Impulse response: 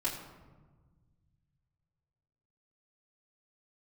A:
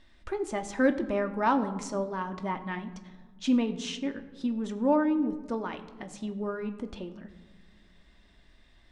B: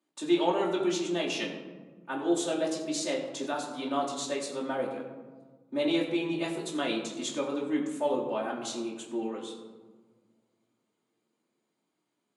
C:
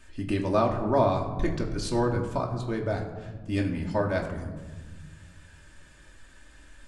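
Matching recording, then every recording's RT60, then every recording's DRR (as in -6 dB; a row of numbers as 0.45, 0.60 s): B; not exponential, 1.4 s, 1.4 s; 6.5, -8.0, -0.5 dB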